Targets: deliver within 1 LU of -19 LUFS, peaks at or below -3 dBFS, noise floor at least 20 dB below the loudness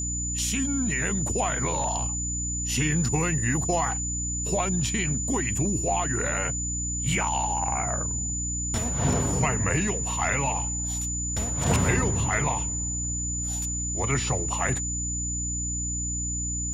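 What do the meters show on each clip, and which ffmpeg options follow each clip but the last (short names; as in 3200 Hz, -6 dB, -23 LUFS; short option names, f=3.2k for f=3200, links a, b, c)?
hum 60 Hz; harmonics up to 300 Hz; hum level -30 dBFS; steady tone 7000 Hz; tone level -29 dBFS; loudness -26.0 LUFS; peak -10.0 dBFS; loudness target -19.0 LUFS
-> -af "bandreject=f=60:t=h:w=6,bandreject=f=120:t=h:w=6,bandreject=f=180:t=h:w=6,bandreject=f=240:t=h:w=6,bandreject=f=300:t=h:w=6"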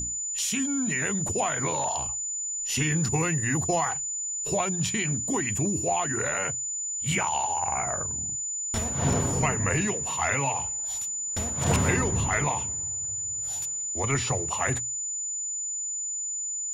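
hum none; steady tone 7000 Hz; tone level -29 dBFS
-> -af "bandreject=f=7k:w=30"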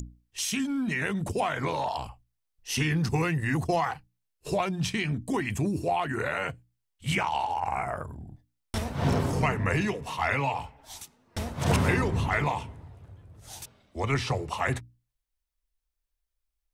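steady tone none; loudness -29.0 LUFS; peak -11.0 dBFS; loudness target -19.0 LUFS
-> -af "volume=10dB,alimiter=limit=-3dB:level=0:latency=1"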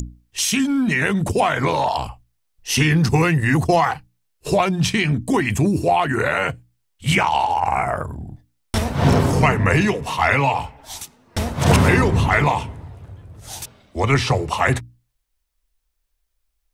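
loudness -19.0 LUFS; peak -3.0 dBFS; noise floor -72 dBFS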